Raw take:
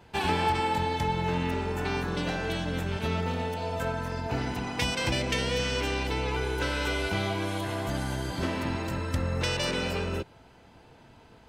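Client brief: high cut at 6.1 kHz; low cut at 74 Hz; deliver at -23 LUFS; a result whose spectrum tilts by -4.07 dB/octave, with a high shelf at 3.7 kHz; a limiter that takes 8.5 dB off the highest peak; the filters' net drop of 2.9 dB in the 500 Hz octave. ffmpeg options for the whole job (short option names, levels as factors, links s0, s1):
-af "highpass=74,lowpass=6100,equalizer=f=500:t=o:g=-3.5,highshelf=f=3700:g=-3,volume=3.16,alimiter=limit=0.211:level=0:latency=1"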